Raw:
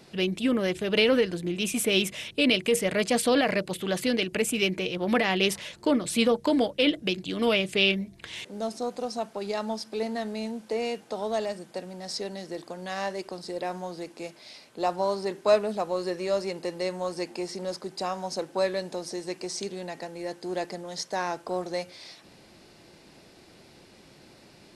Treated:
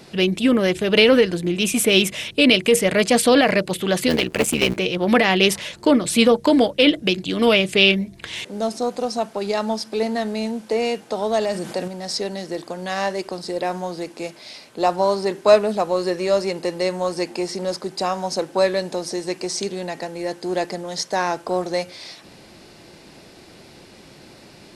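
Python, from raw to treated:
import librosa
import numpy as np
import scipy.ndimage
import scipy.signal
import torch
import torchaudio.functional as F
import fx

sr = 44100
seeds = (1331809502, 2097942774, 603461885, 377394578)

y = fx.cycle_switch(x, sr, every=3, mode='muted', at=(4.07, 4.76), fade=0.02)
y = fx.env_flatten(y, sr, amount_pct=50, at=(11.41, 11.88))
y = y * 10.0 ** (8.0 / 20.0)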